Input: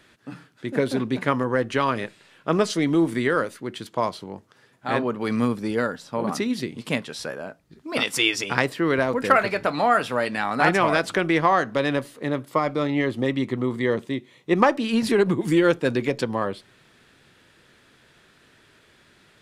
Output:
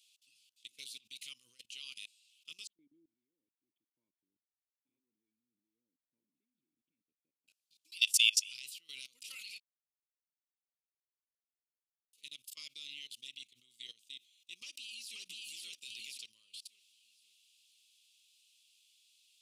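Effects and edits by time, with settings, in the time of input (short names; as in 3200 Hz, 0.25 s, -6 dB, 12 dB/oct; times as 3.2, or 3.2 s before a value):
2.67–7.48 vocal tract filter u
9.6–12.13 mute
14.6–15.2 echo throw 0.53 s, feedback 35%, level -1.5 dB
whole clip: elliptic high-pass 2700 Hz, stop band 40 dB; high shelf 3600 Hz +10 dB; level quantiser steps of 22 dB; gain -3.5 dB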